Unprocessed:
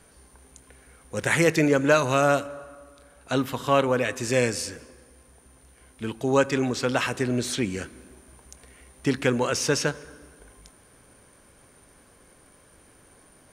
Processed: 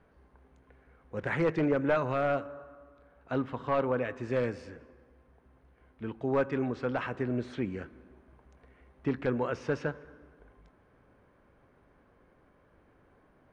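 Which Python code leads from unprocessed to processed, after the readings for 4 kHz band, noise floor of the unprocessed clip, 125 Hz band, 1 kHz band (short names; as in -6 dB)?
-19.0 dB, -56 dBFS, -7.0 dB, -7.5 dB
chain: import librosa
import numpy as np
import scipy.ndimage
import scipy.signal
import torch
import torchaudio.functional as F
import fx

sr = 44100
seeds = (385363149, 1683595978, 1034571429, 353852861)

y = np.minimum(x, 2.0 * 10.0 ** (-13.0 / 20.0) - x)
y = scipy.signal.sosfilt(scipy.signal.butter(2, 1700.0, 'lowpass', fs=sr, output='sos'), y)
y = F.gain(torch.from_numpy(y), -6.0).numpy()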